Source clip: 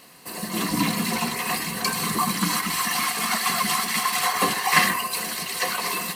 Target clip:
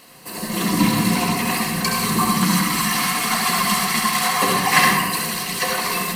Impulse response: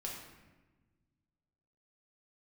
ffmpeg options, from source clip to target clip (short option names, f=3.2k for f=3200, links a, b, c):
-filter_complex "[0:a]asplit=2[a][b];[1:a]atrim=start_sample=2205,lowshelf=f=260:g=8,adelay=68[c];[b][c]afir=irnorm=-1:irlink=0,volume=-2dB[d];[a][d]amix=inputs=2:normalize=0,volume=2dB"